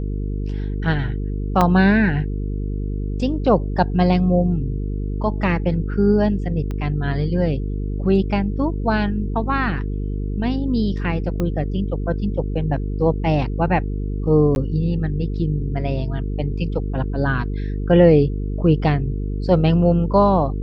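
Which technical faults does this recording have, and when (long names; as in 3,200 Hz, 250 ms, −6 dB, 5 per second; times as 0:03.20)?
mains buzz 50 Hz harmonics 9 −24 dBFS
0:01.61: drop-out 4.4 ms
0:06.71: click −17 dBFS
0:11.40: click −12 dBFS
0:14.55–0:14.56: drop-out 11 ms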